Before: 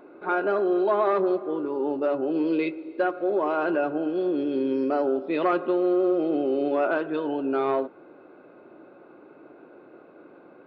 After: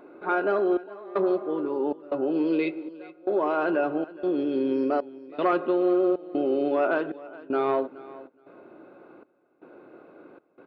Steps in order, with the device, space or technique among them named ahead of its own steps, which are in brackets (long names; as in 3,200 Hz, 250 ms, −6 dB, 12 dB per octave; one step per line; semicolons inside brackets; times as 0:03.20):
trance gate with a delay (gate pattern "xxxx..xxxx." 78 BPM −24 dB; repeating echo 420 ms, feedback 15%, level −19 dB)